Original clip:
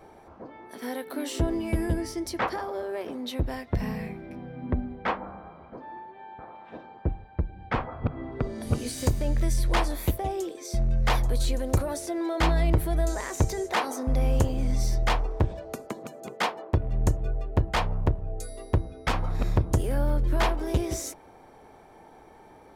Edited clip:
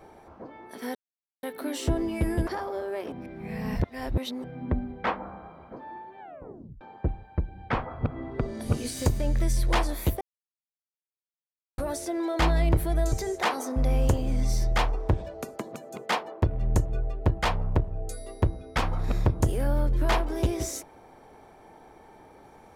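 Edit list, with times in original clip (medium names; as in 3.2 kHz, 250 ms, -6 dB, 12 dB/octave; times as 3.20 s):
0.95 s: insert silence 0.48 s
1.99–2.48 s: delete
3.13–4.45 s: reverse
6.21 s: tape stop 0.61 s
10.22–11.79 s: mute
13.13–13.43 s: delete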